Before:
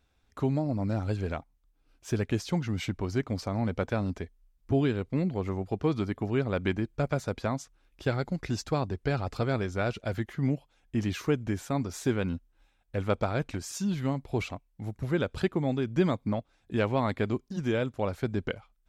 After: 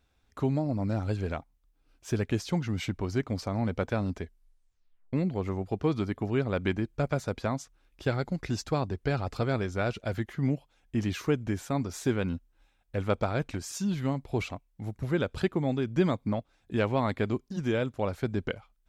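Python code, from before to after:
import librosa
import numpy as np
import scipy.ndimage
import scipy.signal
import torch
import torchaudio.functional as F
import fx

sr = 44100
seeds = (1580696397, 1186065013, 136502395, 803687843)

y = fx.edit(x, sr, fx.tape_stop(start_s=4.23, length_s=0.9), tone=tone)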